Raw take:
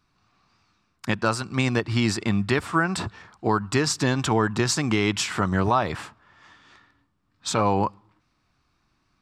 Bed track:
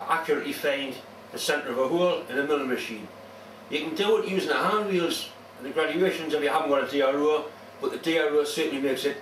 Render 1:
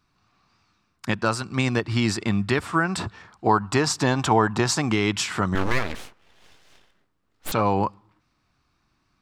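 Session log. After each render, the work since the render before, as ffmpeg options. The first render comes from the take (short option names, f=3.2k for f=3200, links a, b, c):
-filter_complex "[0:a]asettb=1/sr,asplit=3[a][b][c];[a]atrim=end=3.464[d];[b]atrim=start=3.46:end=4.89,asetpts=PTS-STARTPTS,afade=t=in:d=0.004:c=qsin,afade=t=out:st=1.426:d=0.004:c=qsin,equalizer=f=800:t=o:w=1:g=7[e];[c]atrim=start=4.886[f];[d][e]acrossfade=d=0.004:c1=hsin:c2=qsin[g];[g][f]acrossfade=d=0.004:c1=qsin:c2=hsin,asettb=1/sr,asplit=3[h][i][j];[h]atrim=end=5.554[k];[i]atrim=start=5.55:end=7.52,asetpts=PTS-STARTPTS,afade=t=in:d=0.004:c=qsin,afade=t=out:st=1.966:d=0.004:c=qsin,aeval=exprs='abs(val(0))':c=same[l];[j]atrim=start=7.516[m];[k][l]acrossfade=d=0.004:c1=hsin:c2=qsin[n];[n][m]acrossfade=d=0.004:c1=qsin:c2=hsin"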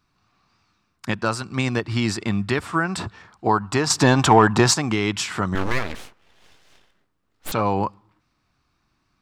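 -filter_complex "[0:a]asettb=1/sr,asplit=3[a][b][c];[a]atrim=end=3.904[d];[b]atrim=start=3.9:end=4.74,asetpts=PTS-STARTPTS,afade=t=in:d=0.004:c=qsin,afade=t=out:st=0.836:d=0.004:c=qsin,acontrast=70[e];[c]atrim=start=4.736[f];[d][e]acrossfade=d=0.004:c1=hsin:c2=qsin[g];[g][f]acrossfade=d=0.004:c1=qsin:c2=hsin"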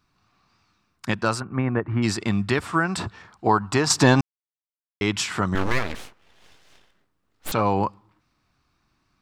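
-filter_complex "[0:a]asplit=3[a][b][c];[a]afade=t=out:st=1.39:d=0.02[d];[b]lowpass=f=1.8k:w=0.5412,lowpass=f=1.8k:w=1.3066,afade=t=in:st=1.39:d=0.02,afade=t=out:st=2.02:d=0.02[e];[c]afade=t=in:st=2.02:d=0.02[f];[d][e][f]amix=inputs=3:normalize=0,asplit=3[g][h][i];[g]atrim=end=4.21,asetpts=PTS-STARTPTS,afade=t=out:st=4.206:d=0.004:c=hsin[j];[h]atrim=start=4.21:end=5.01,asetpts=PTS-STARTPTS,volume=0[k];[i]atrim=start=5.01,asetpts=PTS-STARTPTS,afade=t=in:d=0.004:c=hsin[l];[j][k][l]concat=n=3:v=0:a=1"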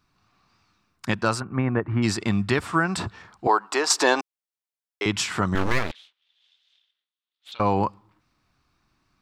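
-filter_complex "[0:a]asettb=1/sr,asplit=3[a][b][c];[a]atrim=end=3.474[d];[b]atrim=start=3.47:end=5.06,asetpts=PTS-STARTPTS,afade=t=in:d=0.004:c=qsin,afade=t=out:st=1.586:d=0.004:c=qsin,highpass=f=360:w=0.5412,highpass=f=360:w=1.3066[e];[c]atrim=start=5.056[f];[d][e]acrossfade=d=0.004:c1=hsin:c2=qsin[g];[g][f]acrossfade=d=0.004:c1=qsin:c2=hsin,asettb=1/sr,asplit=3[h][i][j];[h]atrim=end=5.914[k];[i]atrim=start=5.91:end=7.6,asetpts=PTS-STARTPTS,afade=t=in:d=0.004:c=qsin,afade=t=out:st=1.686:d=0.004:c=qsin,bandpass=f=3.5k:t=q:w=5.2[l];[j]atrim=start=7.596[m];[k][l]acrossfade=d=0.004:c1=hsin:c2=qsin[n];[n][m]acrossfade=d=0.004:c1=qsin:c2=hsin"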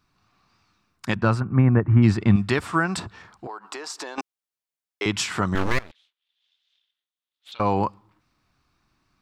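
-filter_complex "[0:a]asettb=1/sr,asplit=3[a][b][c];[a]atrim=end=1.164[d];[b]atrim=start=1.16:end=2.36,asetpts=PTS-STARTPTS,afade=t=in:d=0.004:c=qsin,afade=t=out:st=1.196:d=0.004:c=qsin,bass=f=250:g=10,treble=f=4k:g=-14[e];[c]atrim=start=2.356[f];[d][e]acrossfade=d=0.004:c1=hsin:c2=qsin[g];[g][f]acrossfade=d=0.004:c1=qsin:c2=hsin,asettb=1/sr,asplit=3[h][i][j];[h]atrim=end=2.994[k];[i]atrim=start=2.99:end=4.18,asetpts=PTS-STARTPTS,afade=t=in:d=0.004:c=qsin,afade=t=out:st=1.186:d=0.004:c=qsin,acompressor=threshold=-31dB:ratio=12:attack=3.2:release=140:knee=1:detection=peak[l];[j]atrim=start=4.176[m];[k][l]acrossfade=d=0.004:c1=hsin:c2=qsin[n];[n][m]acrossfade=d=0.004:c1=qsin:c2=hsin,asplit=2[o][p];[o]atrim=end=5.79,asetpts=PTS-STARTPTS,afade=t=out:st=5.786:d=0.004:c=hsin:silence=0.133352[q];[p]atrim=start=5.79,asetpts=PTS-STARTPTS,afade=t=in:d=1.95:silence=0.133352[r];[q][r]concat=n=2:v=0:a=1"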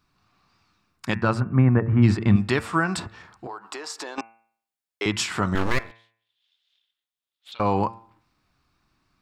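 -af "bandreject=f=6k:w=27,bandreject=f=113.5:t=h:w=4,bandreject=f=227:t=h:w=4,bandreject=f=340.5:t=h:w=4,bandreject=f=454:t=h:w=4,bandreject=f=567.5:t=h:w=4,bandreject=f=681:t=h:w=4,bandreject=f=794.5:t=h:w=4,bandreject=f=908:t=h:w=4,bandreject=f=1.0215k:t=h:w=4,bandreject=f=1.135k:t=h:w=4,bandreject=f=1.2485k:t=h:w=4,bandreject=f=1.362k:t=h:w=4,bandreject=f=1.4755k:t=h:w=4,bandreject=f=1.589k:t=h:w=4,bandreject=f=1.7025k:t=h:w=4,bandreject=f=1.816k:t=h:w=4,bandreject=f=1.9295k:t=h:w=4,bandreject=f=2.043k:t=h:w=4,bandreject=f=2.1565k:t=h:w=4,bandreject=f=2.27k:t=h:w=4,bandreject=f=2.3835k:t=h:w=4,bandreject=f=2.497k:t=h:w=4,bandreject=f=2.6105k:t=h:w=4,bandreject=f=2.724k:t=h:w=4"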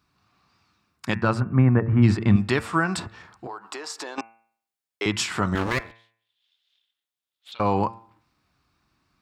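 -af "highpass=41"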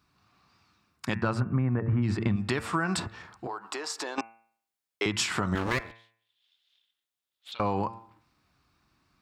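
-af "alimiter=limit=-13dB:level=0:latency=1:release=128,acompressor=threshold=-23dB:ratio=5"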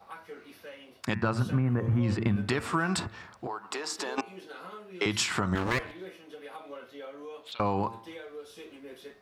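-filter_complex "[1:a]volume=-20dB[a];[0:a][a]amix=inputs=2:normalize=0"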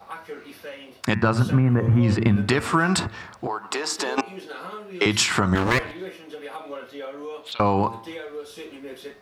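-af "volume=8dB"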